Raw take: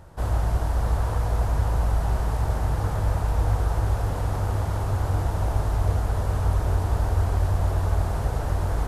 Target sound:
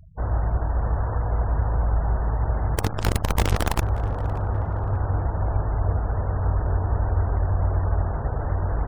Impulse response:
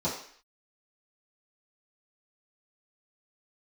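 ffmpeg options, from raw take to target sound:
-filter_complex "[0:a]asettb=1/sr,asplit=3[link_01][link_02][link_03];[link_01]atrim=end=2.754[link_04];[link_02]atrim=start=2.75:end=3.82,asetpts=PTS-STARTPTS,afade=type=in:duration=0.004:curve=qsin,afade=type=out:start_time=1.066:duration=0.004:curve=qsin,acrusher=bits=4:dc=4:mix=0:aa=0.000001[link_05];[link_03]atrim=start=3.816[link_06];[link_04][link_05]acrossfade=duration=0.004:curve1=hsin:curve2=qsin[link_07];[link_07][link_06]acrossfade=duration=0.004:curve1=qsin:curve2=hsin,afftfilt=real='re*gte(hypot(re,im),0.0141)':imag='im*gte(hypot(re,im),0.0141)':win_size=1024:overlap=0.75,asplit=2[link_08][link_09];[link_09]adelay=581,lowpass=frequency=2100:poles=1,volume=-17dB,asplit=2[link_10][link_11];[link_11]adelay=581,lowpass=frequency=2100:poles=1,volume=0.46,asplit=2[link_12][link_13];[link_13]adelay=581,lowpass=frequency=2100:poles=1,volume=0.46,asplit=2[link_14][link_15];[link_15]adelay=581,lowpass=frequency=2100:poles=1,volume=0.46[link_16];[link_08][link_10][link_12][link_14][link_16]amix=inputs=5:normalize=0"

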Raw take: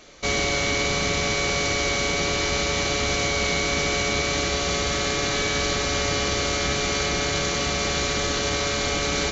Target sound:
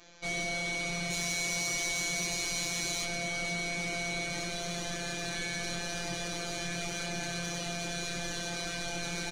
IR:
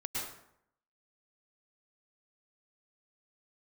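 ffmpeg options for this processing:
-filter_complex "[0:a]asettb=1/sr,asplit=3[link_01][link_02][link_03];[link_01]atrim=end=1.104[link_04];[link_02]atrim=start=1.1:end=3.05,asetpts=PTS-STARTPTS,afade=type=in:duration=0.004:curve=qsin,afade=type=out:start_time=1.946:duration=0.004:curve=qsin,aemphasis=mode=production:type=50fm[link_05];[link_03]atrim=start=3.046[link_06];[link_04][link_05]acrossfade=duration=0.004:curve1=hsin:curve2=qsin[link_07];[link_07][link_06]acrossfade=duration=0.004:curve1=qsin:curve2=hsin,afftfilt=real='hypot(re,im)*cos(PI*b)':imag='0':win_size=1024:overlap=0.75,asoftclip=type=tanh:threshold=-18.5dB,aeval=exprs='0.119*(cos(1*acos(clip(val(0)/0.119,-1,1)))-cos(1*PI/2))+0.00237*(cos(4*acos(clip(val(0)/0.119,-1,1)))-cos(4*PI/2))+0.00188*(cos(5*acos(clip(val(0)/0.119,-1,1)))-cos(5*PI/2))':channel_layout=same,asplit=2[link_08][link_09];[link_09]adelay=22,volume=-5.5dB[link_10];[link_08][link_10]amix=inputs=2:normalize=0,volume=-5dB"

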